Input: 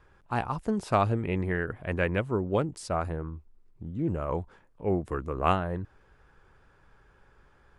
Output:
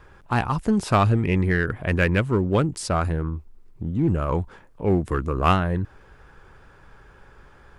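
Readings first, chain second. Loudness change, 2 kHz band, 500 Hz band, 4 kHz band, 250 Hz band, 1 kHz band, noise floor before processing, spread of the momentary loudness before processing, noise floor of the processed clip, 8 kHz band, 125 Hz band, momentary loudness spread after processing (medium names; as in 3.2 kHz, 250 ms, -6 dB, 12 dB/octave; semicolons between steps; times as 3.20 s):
+7.0 dB, +8.0 dB, +4.5 dB, +9.0 dB, +8.0 dB, +5.0 dB, -62 dBFS, 12 LU, -51 dBFS, +10.0 dB, +9.0 dB, 9 LU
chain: dynamic bell 610 Hz, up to -6 dB, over -40 dBFS, Q 0.84; in parallel at -5.5 dB: overload inside the chain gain 27.5 dB; on the sum: trim +6.5 dB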